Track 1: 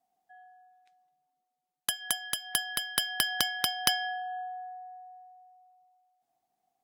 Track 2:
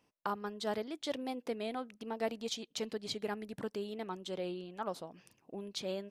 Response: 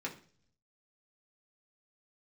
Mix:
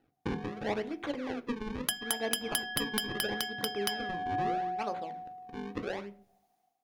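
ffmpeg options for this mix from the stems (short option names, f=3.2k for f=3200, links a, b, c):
-filter_complex "[0:a]dynaudnorm=f=110:g=7:m=13.5dB,volume=-7dB,asplit=2[a][b];[b]volume=-17.5dB[c];[1:a]acrusher=samples=38:mix=1:aa=0.000001:lfo=1:lforange=60.8:lforate=0.76,lowpass=3.7k,volume=-1dB,asplit=2[d][e];[e]volume=-4dB[f];[2:a]atrim=start_sample=2205[g];[c][f]amix=inputs=2:normalize=0[h];[h][g]afir=irnorm=-1:irlink=0[i];[a][d][i]amix=inputs=3:normalize=0,bandreject=f=7.8k:w=10,alimiter=limit=-12dB:level=0:latency=1:release=265"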